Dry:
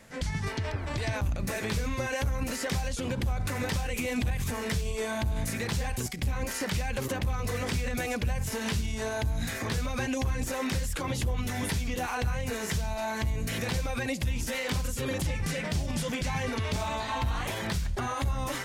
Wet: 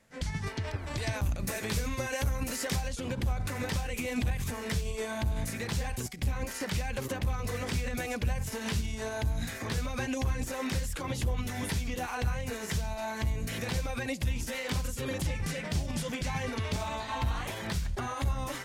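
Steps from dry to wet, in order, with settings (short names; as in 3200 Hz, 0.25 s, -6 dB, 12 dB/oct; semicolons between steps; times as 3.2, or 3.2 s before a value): 0.67–2.76 high shelf 5800 Hz +7 dB; upward expander 1.5:1, over -49 dBFS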